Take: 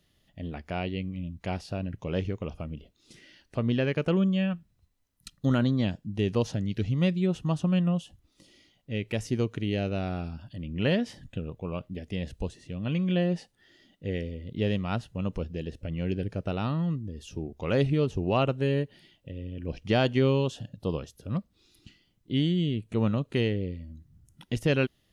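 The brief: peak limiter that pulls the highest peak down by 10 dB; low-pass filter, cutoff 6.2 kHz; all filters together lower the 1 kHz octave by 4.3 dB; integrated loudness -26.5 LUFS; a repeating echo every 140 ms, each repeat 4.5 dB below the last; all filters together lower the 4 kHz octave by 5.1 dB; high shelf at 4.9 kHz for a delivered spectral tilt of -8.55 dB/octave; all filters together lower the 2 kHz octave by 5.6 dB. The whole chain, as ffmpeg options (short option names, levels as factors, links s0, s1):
-af "lowpass=6200,equalizer=f=1000:t=o:g=-5,equalizer=f=2000:t=o:g=-5,equalizer=f=4000:t=o:g=-5.5,highshelf=f=4900:g=3.5,alimiter=limit=0.0668:level=0:latency=1,aecho=1:1:140|280|420|560|700|840|980|1120|1260:0.596|0.357|0.214|0.129|0.0772|0.0463|0.0278|0.0167|0.01,volume=2"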